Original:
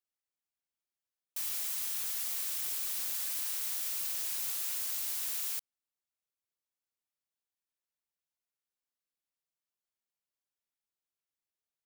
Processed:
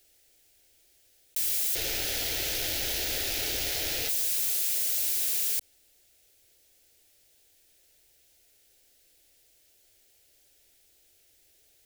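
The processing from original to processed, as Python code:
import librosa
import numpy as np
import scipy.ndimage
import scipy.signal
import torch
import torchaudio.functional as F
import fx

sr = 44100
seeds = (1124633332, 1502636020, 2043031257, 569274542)

y = fx.median_filter(x, sr, points=5, at=(1.75, 4.09))
y = fx.low_shelf(y, sr, hz=200.0, db=7.5)
y = fx.leveller(y, sr, passes=3)
y = fx.fixed_phaser(y, sr, hz=450.0, stages=4)
y = fx.env_flatten(y, sr, amount_pct=50)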